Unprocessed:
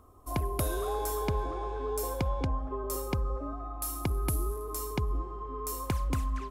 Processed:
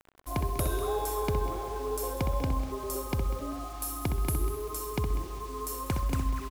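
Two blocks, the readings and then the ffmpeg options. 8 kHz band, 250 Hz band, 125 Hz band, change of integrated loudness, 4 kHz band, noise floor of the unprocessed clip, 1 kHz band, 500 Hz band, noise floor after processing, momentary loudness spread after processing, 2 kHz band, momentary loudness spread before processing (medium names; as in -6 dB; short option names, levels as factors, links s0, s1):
+1.0 dB, +1.5 dB, +1.0 dB, +1.0 dB, +2.0 dB, -40 dBFS, +1.0 dB, +1.0 dB, -40 dBFS, 5 LU, +1.0 dB, 5 LU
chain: -filter_complex "[0:a]asplit=2[s0][s1];[s1]aecho=0:1:195|390|585|780:0.2|0.0818|0.0335|0.0138[s2];[s0][s2]amix=inputs=2:normalize=0,acrusher=bits=7:mix=0:aa=0.000001,asplit=2[s3][s4];[s4]adelay=64,lowpass=f=2900:p=1,volume=0.501,asplit=2[s5][s6];[s6]adelay=64,lowpass=f=2900:p=1,volume=0.25,asplit=2[s7][s8];[s8]adelay=64,lowpass=f=2900:p=1,volume=0.25[s9];[s5][s7][s9]amix=inputs=3:normalize=0[s10];[s3][s10]amix=inputs=2:normalize=0"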